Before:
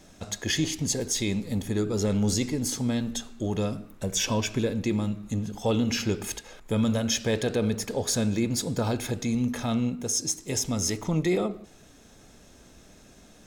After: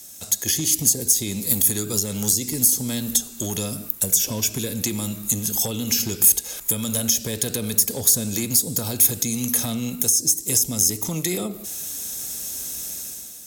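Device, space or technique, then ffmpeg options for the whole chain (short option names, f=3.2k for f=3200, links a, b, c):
FM broadcast chain: -filter_complex "[0:a]highpass=41,dynaudnorm=f=120:g=9:m=11dB,acrossover=split=280|650[a][b][c];[a]acompressor=threshold=-21dB:ratio=4[d];[b]acompressor=threshold=-28dB:ratio=4[e];[c]acompressor=threshold=-34dB:ratio=4[f];[d][e][f]amix=inputs=3:normalize=0,aemphasis=mode=production:type=75fm,alimiter=limit=-11.5dB:level=0:latency=1:release=294,asoftclip=type=hard:threshold=-15dB,lowpass=f=15k:w=0.5412,lowpass=f=15k:w=1.3066,aemphasis=mode=production:type=75fm,volume=-4dB"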